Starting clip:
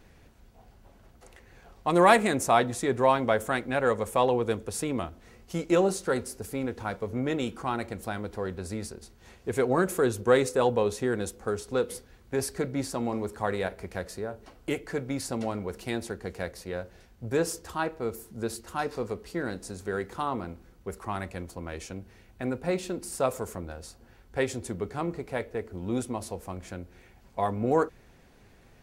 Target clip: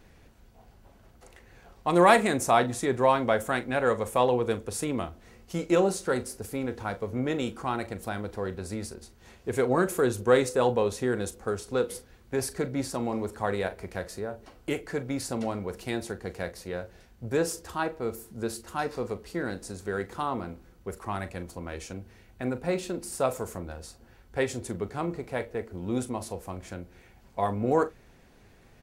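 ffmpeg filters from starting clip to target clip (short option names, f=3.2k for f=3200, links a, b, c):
-filter_complex "[0:a]asplit=2[a][b];[b]adelay=40,volume=-14dB[c];[a][c]amix=inputs=2:normalize=0"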